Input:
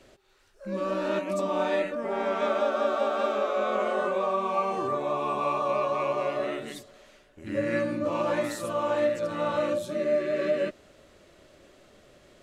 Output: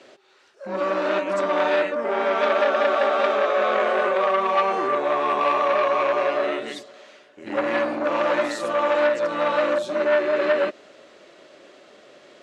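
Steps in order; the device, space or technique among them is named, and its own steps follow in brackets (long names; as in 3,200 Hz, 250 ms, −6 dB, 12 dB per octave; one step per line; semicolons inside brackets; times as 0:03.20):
public-address speaker with an overloaded transformer (saturating transformer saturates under 1,300 Hz; band-pass filter 310–5,800 Hz)
level +8.5 dB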